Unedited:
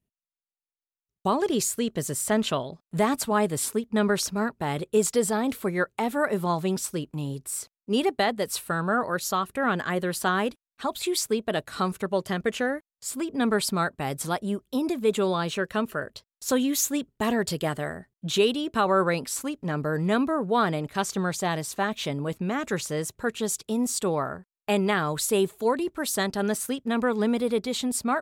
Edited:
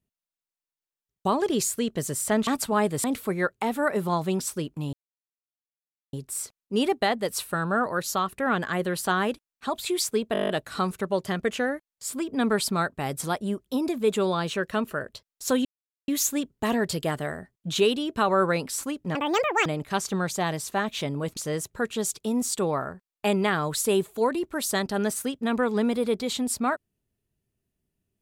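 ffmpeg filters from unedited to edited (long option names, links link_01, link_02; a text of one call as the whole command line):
ffmpeg -i in.wav -filter_complex "[0:a]asplit=16[link_01][link_02][link_03][link_04][link_05][link_06][link_07][link_08][link_09][link_10][link_11][link_12][link_13][link_14][link_15][link_16];[link_01]atrim=end=2.472[link_17];[link_02]atrim=start=3.058:end=3.632[link_18];[link_03]atrim=start=5.408:end=7.3,asetpts=PTS-STARTPTS,afade=type=out:start_time=1.888:duration=0.004:curve=hsin,apad=pad_dur=1.2[link_19];[link_04]atrim=start=7.3:end=11.522,asetpts=PTS-STARTPTS,afade=type=in:duration=0.004:curve=hsin[link_20];[link_05]atrim=start=11.498:end=11.522[link_21];[link_06]atrim=start=11.498:end=11.522[link_22];[link_07]atrim=start=11.498:end=11.522[link_23];[link_08]atrim=start=11.498:end=11.522[link_24];[link_09]atrim=start=11.498:end=11.522[link_25];[link_10]atrim=start=11.498:end=11.522[link_26];[link_11]atrim=start=11.498:end=11.522[link_27];[link_12]atrim=start=11.498:end=16.66,asetpts=PTS-STARTPTS,afade=type=out:start_time=5.158:duration=0.004:curve=hsin,apad=pad_dur=0.43[link_28];[link_13]atrim=start=16.66:end=19.734,asetpts=PTS-STARTPTS,afade=type=in:duration=0.004:curve=hsin[link_29];[link_14]atrim=start=19.73:end=20.7,asetpts=PTS-STARTPTS,asetrate=84231,aresample=44100,atrim=end_sample=22396,asetpts=PTS-STARTPTS[link_30];[link_15]atrim=start=20.696:end=22.412[link_31];[link_16]atrim=start=22.808[link_32];[link_17][link_18]acrossfade=duration=0.004:curve1=hsin:curve2=hsin[link_33];[link_19][link_20]concat=n=2:v=0:a=1[link_34];[link_33][link_34]acrossfade=duration=0.004:curve1=hsin:curve2=hsin[link_35];[link_35][link_21]acrossfade=duration=0.004:curve1=hsin:curve2=hsin[link_36];[link_36][link_22]acrossfade=duration=0.004:curve1=hsin:curve2=hsin[link_37];[link_37][link_23]acrossfade=duration=0.004:curve1=hsin:curve2=hsin[link_38];[link_38][link_24]acrossfade=duration=0.004:curve1=hsin:curve2=hsin[link_39];[link_39][link_25]acrossfade=duration=0.004:curve1=hsin:curve2=hsin[link_40];[link_40][link_26]acrossfade=duration=0.004:curve1=hsin:curve2=hsin[link_41];[link_41][link_27]acrossfade=duration=0.004:curve1=hsin:curve2=hsin[link_42];[link_28][link_29]concat=n=2:v=0:a=1[link_43];[link_42][link_43]acrossfade=duration=0.004:curve1=hsin:curve2=hsin[link_44];[link_44][link_30]acrossfade=duration=0.004:curve1=hsin:curve2=hsin[link_45];[link_45][link_31]acrossfade=duration=0.004:curve1=hsin:curve2=hsin[link_46];[link_46][link_32]acrossfade=duration=0.004:curve1=hsin:curve2=hsin" out.wav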